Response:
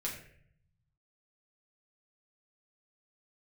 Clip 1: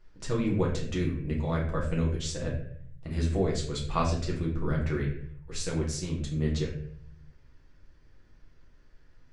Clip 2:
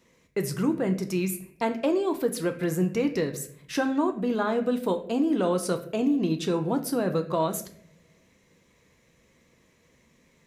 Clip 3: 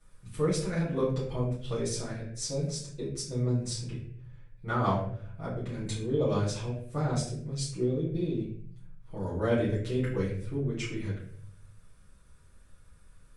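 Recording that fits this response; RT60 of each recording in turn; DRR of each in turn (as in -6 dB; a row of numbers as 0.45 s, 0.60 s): 1; 0.60 s, no single decay rate, 0.60 s; -4.0 dB, 5.5 dB, -11.0 dB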